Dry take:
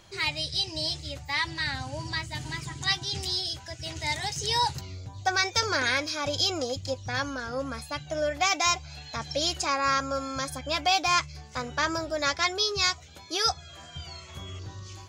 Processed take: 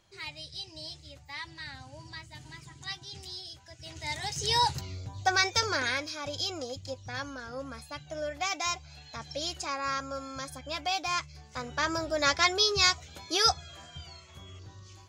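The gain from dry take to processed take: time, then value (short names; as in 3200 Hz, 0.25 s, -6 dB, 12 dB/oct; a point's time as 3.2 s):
3.62 s -12 dB
4.51 s 0 dB
5.42 s 0 dB
6.19 s -7 dB
11.28 s -7 dB
12.32 s +1.5 dB
13.49 s +1.5 dB
14.27 s -8 dB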